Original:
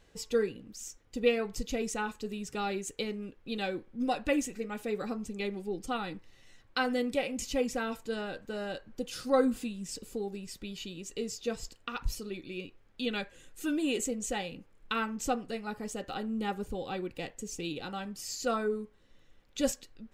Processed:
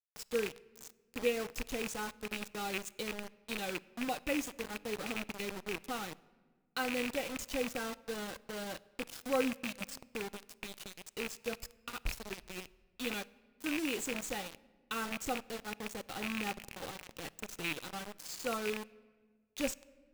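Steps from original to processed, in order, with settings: rattle on loud lows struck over -38 dBFS, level -18 dBFS; 16.57–17.33 s: compressor with a negative ratio -40 dBFS, ratio -1; bit crusher 6-bit; on a send: reverberation RT60 1.6 s, pre-delay 6 ms, DRR 19 dB; on the sum: trim -6 dB

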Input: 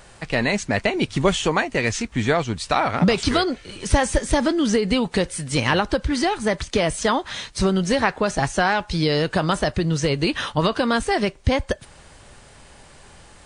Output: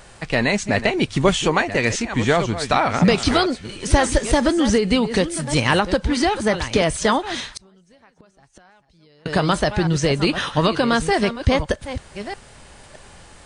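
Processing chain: chunks repeated in reverse 617 ms, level -11.5 dB; 7.47–9.26 s: inverted gate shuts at -19 dBFS, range -35 dB; trim +2 dB

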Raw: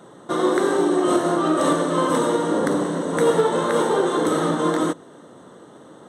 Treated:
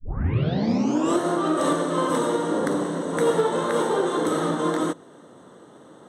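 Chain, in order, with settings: tape start-up on the opening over 1.18 s; trim -3 dB

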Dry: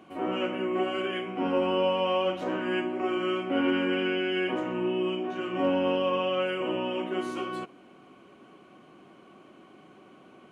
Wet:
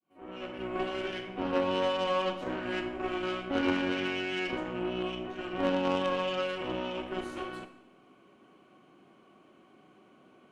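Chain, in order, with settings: fade-in on the opening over 0.79 s; Chebyshev shaper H 2 -18 dB, 3 -15 dB, 4 -22 dB, 6 -21 dB, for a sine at -15 dBFS; Schroeder reverb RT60 0.71 s, combs from 28 ms, DRR 9.5 dB

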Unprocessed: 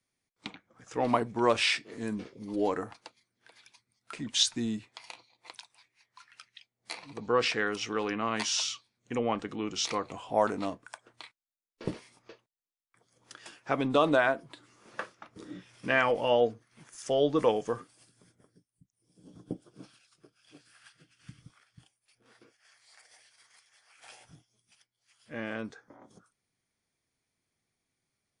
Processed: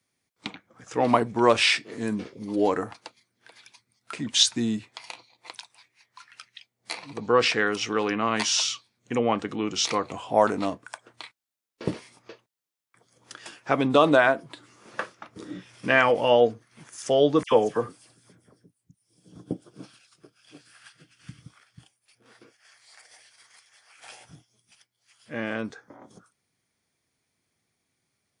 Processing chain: high-pass 61 Hz; 17.43–19.34 s: phase dispersion lows, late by 85 ms, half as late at 2.1 kHz; trim +6 dB

